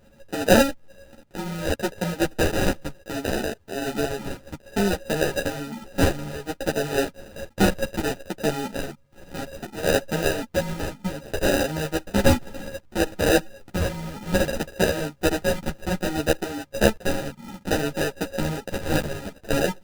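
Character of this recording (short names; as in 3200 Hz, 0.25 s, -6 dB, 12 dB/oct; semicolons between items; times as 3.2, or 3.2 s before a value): a buzz of ramps at a fixed pitch in blocks of 16 samples; phasing stages 8, 0.62 Hz, lowest notch 420–1700 Hz; aliases and images of a low sample rate 1100 Hz, jitter 0%; a shimmering, thickened sound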